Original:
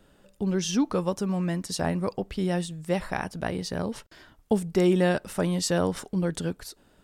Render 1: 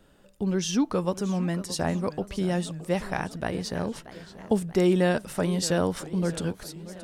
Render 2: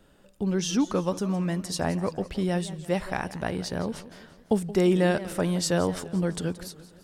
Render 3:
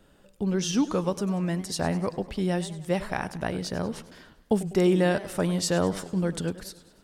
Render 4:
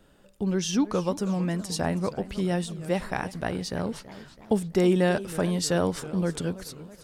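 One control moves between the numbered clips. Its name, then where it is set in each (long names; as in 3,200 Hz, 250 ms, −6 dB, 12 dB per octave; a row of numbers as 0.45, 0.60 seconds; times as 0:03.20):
feedback echo with a swinging delay time, delay time: 627, 170, 98, 323 milliseconds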